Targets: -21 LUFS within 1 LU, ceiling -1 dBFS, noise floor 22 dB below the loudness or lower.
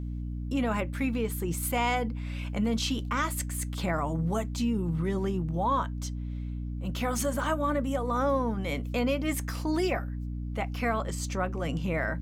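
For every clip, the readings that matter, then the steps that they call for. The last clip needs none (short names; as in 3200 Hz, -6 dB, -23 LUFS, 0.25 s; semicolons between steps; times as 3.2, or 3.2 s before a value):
hum 60 Hz; harmonics up to 300 Hz; hum level -32 dBFS; loudness -30.5 LUFS; peak -16.5 dBFS; loudness target -21.0 LUFS
-> de-hum 60 Hz, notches 5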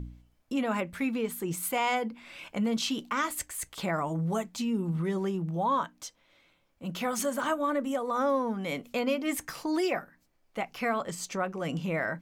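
hum none; loudness -31.0 LUFS; peak -16.5 dBFS; loudness target -21.0 LUFS
-> gain +10 dB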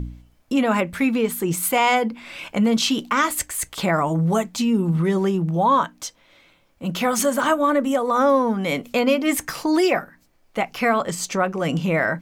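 loudness -21.0 LUFS; peak -6.5 dBFS; noise floor -59 dBFS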